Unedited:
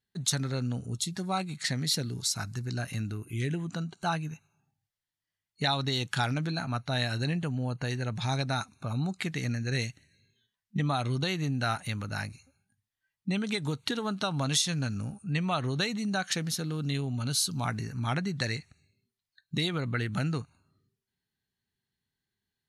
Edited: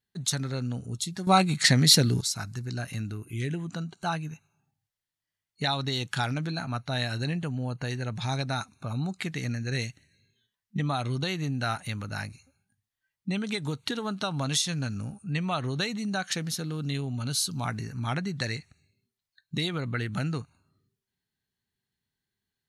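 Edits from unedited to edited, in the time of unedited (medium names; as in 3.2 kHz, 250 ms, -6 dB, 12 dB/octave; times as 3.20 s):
1.27–2.21 s: gain +10.5 dB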